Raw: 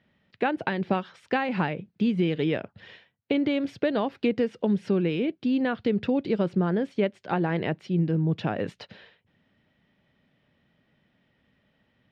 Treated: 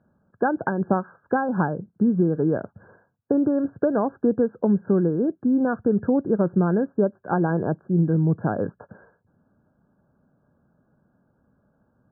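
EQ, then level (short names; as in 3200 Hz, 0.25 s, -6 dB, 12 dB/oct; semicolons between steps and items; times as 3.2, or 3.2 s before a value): brick-wall FIR low-pass 1700 Hz; air absorption 240 m; +4.5 dB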